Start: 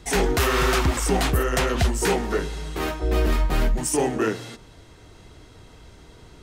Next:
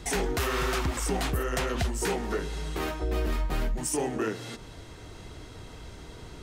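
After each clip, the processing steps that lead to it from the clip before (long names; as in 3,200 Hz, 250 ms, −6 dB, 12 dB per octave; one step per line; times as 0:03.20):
downward compressor 2 to 1, threshold −37 dBFS, peak gain reduction 11.5 dB
level +3 dB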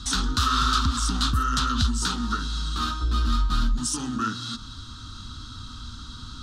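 drawn EQ curve 110 Hz 0 dB, 170 Hz −8 dB, 240 Hz +4 dB, 400 Hz −23 dB, 690 Hz −24 dB, 1,300 Hz +8 dB, 2,100 Hz −20 dB, 3,700 Hz +9 dB, 9,500 Hz −6 dB, 14,000 Hz −17 dB
level +6 dB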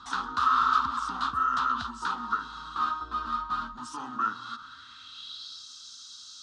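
band-pass filter sweep 1,000 Hz → 6,000 Hz, 0:04.41–0:05.68
level +5.5 dB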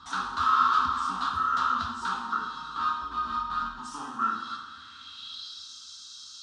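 coupled-rooms reverb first 0.75 s, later 2.8 s, DRR −1 dB
level −2.5 dB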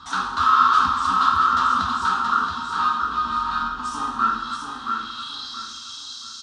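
repeating echo 675 ms, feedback 31%, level −5 dB
level +6.5 dB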